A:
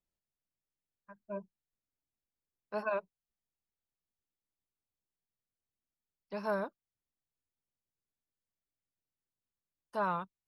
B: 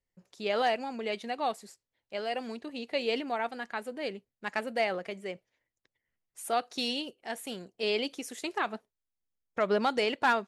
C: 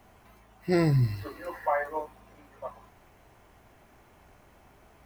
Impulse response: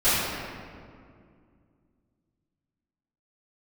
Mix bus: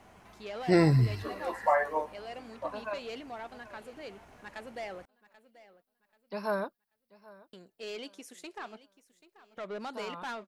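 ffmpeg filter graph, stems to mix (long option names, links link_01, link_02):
-filter_complex "[0:a]aexciter=amount=1.3:drive=3.8:freq=3800,volume=2.5dB,asplit=2[link_01][link_02];[link_02]volume=-22dB[link_03];[1:a]asoftclip=type=tanh:threshold=-25.5dB,volume=-8dB,asplit=3[link_04][link_05][link_06];[link_04]atrim=end=5.03,asetpts=PTS-STARTPTS,afade=type=out:start_time=5.026:duration=0.004:curve=hsin[link_07];[link_05]atrim=start=5.03:end=7.53,asetpts=PTS-STARTPTS,volume=0[link_08];[link_06]atrim=start=7.53,asetpts=PTS-STARTPTS,afade=type=in:duration=0.004:curve=hsin[link_09];[link_07][link_08][link_09]concat=n=3:v=0:a=1,asplit=3[link_10][link_11][link_12];[link_11]volume=-17.5dB[link_13];[2:a]lowpass=10000,volume=2dB[link_14];[link_12]apad=whole_len=461967[link_15];[link_01][link_15]sidechaincompress=threshold=-51dB:ratio=6:attack=5.6:release=210[link_16];[link_03][link_13]amix=inputs=2:normalize=0,aecho=0:1:785|1570|2355|3140:1|0.29|0.0841|0.0244[link_17];[link_16][link_10][link_14][link_17]amix=inputs=4:normalize=0,lowshelf=frequency=97:gain=-7"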